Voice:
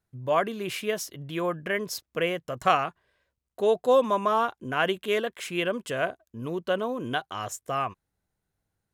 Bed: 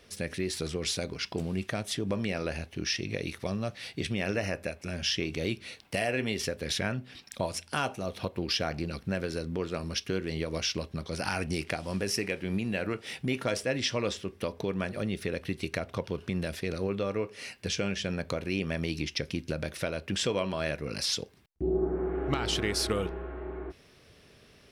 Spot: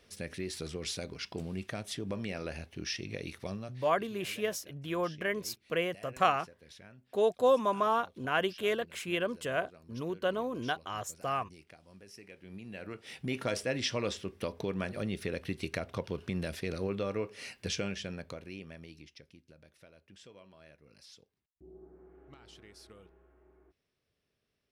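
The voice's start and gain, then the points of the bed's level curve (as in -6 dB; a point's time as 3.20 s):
3.55 s, -4.5 dB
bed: 3.53 s -6 dB
4.04 s -23 dB
12.07 s -23 dB
13.41 s -3 dB
17.74 s -3 dB
19.43 s -25.5 dB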